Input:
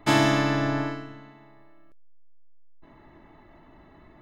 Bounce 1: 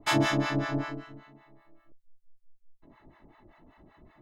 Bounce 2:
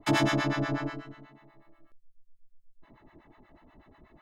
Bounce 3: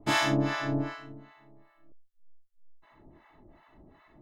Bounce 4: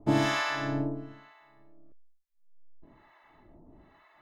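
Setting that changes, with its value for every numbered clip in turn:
two-band tremolo in antiphase, speed: 5.2, 8.2, 2.6, 1.1 Hertz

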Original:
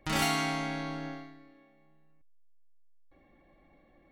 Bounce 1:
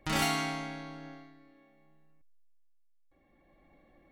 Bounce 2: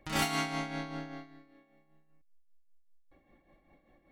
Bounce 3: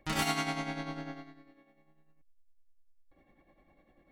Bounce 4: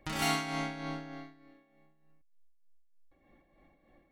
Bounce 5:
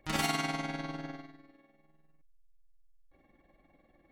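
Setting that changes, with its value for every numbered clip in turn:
amplitude tremolo, speed: 0.51, 5.1, 10, 3.3, 20 Hertz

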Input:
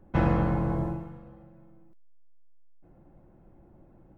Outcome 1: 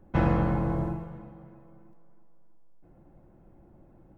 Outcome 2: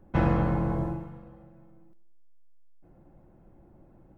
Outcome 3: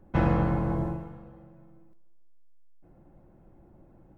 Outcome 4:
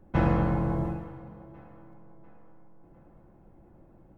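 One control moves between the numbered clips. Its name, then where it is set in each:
tape delay, delay time: 325, 97, 150, 698 milliseconds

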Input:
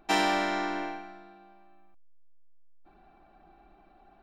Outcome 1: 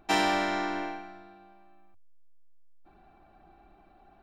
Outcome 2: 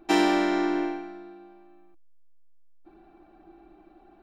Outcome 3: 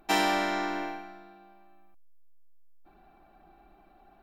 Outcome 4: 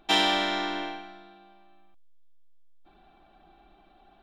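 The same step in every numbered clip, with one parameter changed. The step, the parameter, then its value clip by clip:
parametric band, centre frequency: 93, 330, 14,000, 3,400 Hertz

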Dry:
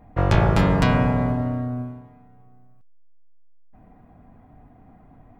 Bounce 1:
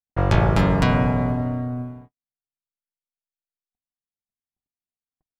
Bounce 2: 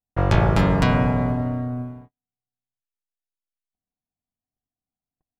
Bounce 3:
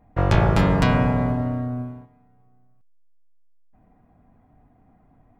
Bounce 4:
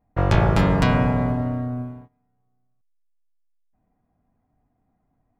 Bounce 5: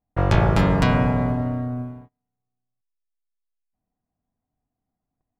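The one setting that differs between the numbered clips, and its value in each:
noise gate, range: −59, −46, −7, −20, −33 decibels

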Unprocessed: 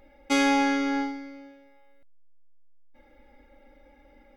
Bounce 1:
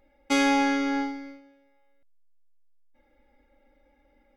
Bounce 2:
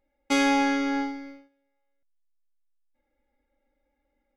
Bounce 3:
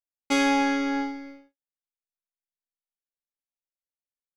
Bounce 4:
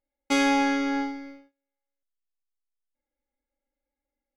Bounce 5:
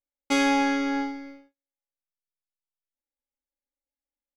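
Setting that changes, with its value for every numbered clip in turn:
noise gate, range: −8, −20, −58, −33, −46 decibels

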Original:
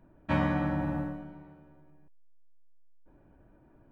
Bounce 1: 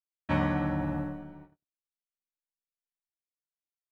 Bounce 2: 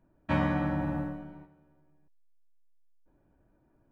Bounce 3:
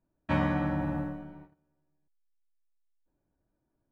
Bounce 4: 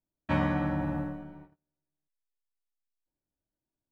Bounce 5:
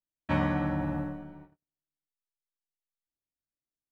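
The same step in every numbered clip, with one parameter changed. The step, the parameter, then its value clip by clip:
noise gate, range: −60, −8, −20, −33, −45 decibels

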